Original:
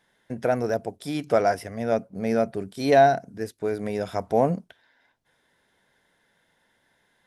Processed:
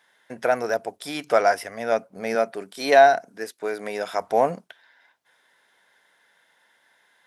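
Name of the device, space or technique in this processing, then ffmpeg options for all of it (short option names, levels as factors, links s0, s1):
filter by subtraction: -filter_complex "[0:a]asettb=1/sr,asplit=3[s0][s1][s2];[s0]atrim=end=2.354[s3];[s1]atrim=start=2.35:end=4.21,asetpts=PTS-STARTPTS,afade=t=in:d=0.004:c=qsin,afade=t=out:st=1.856:d=0.004:c=qsin,highpass=170[s4];[s2]atrim=start=4.206[s5];[s3][s4]acrossfade=d=0.004:c1=hsin:c2=qsin[s6];[s6][s5]acrossfade=d=0.004:c1=qsin:c2=hsin,asplit=2[s7][s8];[s8]lowpass=1200,volume=-1[s9];[s7][s9]amix=inputs=2:normalize=0,volume=1.68"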